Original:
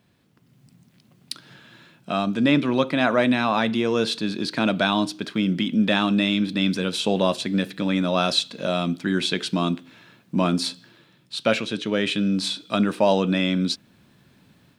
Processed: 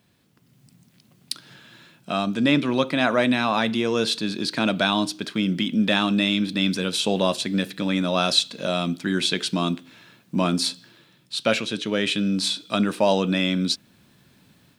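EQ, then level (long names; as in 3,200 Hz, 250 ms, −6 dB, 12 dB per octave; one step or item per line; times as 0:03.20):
high-shelf EQ 3,800 Hz +6.5 dB
−1.0 dB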